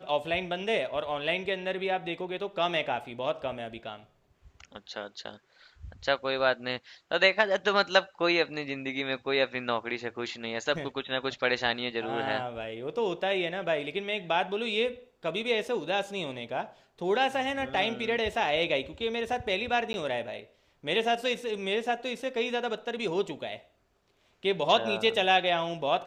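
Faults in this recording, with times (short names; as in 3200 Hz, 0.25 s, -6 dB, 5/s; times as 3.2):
19.93–19.94 gap 11 ms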